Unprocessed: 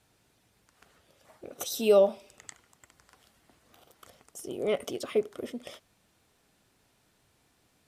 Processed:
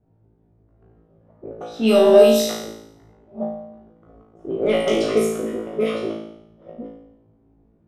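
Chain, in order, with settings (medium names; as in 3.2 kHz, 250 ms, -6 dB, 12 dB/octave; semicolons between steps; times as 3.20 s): chunks repeated in reverse 687 ms, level -2 dB; level-controlled noise filter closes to 360 Hz, open at -23 dBFS; 1.69–2.14 s: peaking EQ 530 Hz -12.5 dB 0.37 oct; in parallel at -3.5 dB: saturation -22.5 dBFS, distortion -12 dB; on the sum: flutter echo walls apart 3.1 m, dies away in 0.76 s; on a send at -16 dB: reverberation RT60 0.70 s, pre-delay 3 ms; on the sum: trim +3.5 dB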